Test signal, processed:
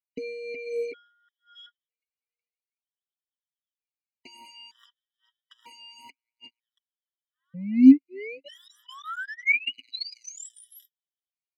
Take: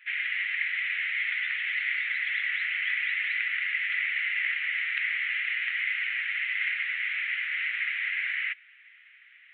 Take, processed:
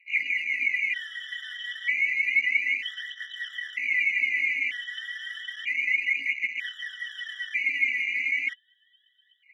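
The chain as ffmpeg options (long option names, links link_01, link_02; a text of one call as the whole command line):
ffmpeg -i in.wav -filter_complex "[0:a]aecho=1:1:4.6:1,aphaser=in_gain=1:out_gain=1:delay=4.3:decay=0.73:speed=0.31:type=triangular,acrossover=split=2100[link_01][link_02];[link_01]acrusher=bits=4:mix=0:aa=0.5[link_03];[link_03][link_02]amix=inputs=2:normalize=0,asplit=3[link_04][link_05][link_06];[link_04]bandpass=frequency=270:width_type=q:width=8,volume=0dB[link_07];[link_05]bandpass=frequency=2290:width_type=q:width=8,volume=-6dB[link_08];[link_06]bandpass=frequency=3010:width_type=q:width=8,volume=-9dB[link_09];[link_07][link_08][link_09]amix=inputs=3:normalize=0,afftfilt=real='re*gt(sin(2*PI*0.53*pts/sr)*(1-2*mod(floor(b*sr/1024/990),2)),0)':imag='im*gt(sin(2*PI*0.53*pts/sr)*(1-2*mod(floor(b*sr/1024/990),2)),0)':win_size=1024:overlap=0.75,volume=8dB" out.wav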